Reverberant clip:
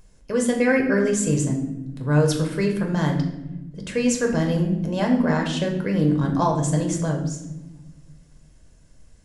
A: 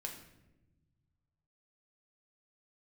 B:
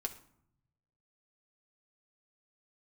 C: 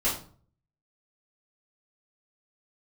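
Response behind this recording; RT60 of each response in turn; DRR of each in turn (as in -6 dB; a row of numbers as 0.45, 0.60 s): A; 1.0, 0.70, 0.45 s; 1.5, 3.0, -9.0 dB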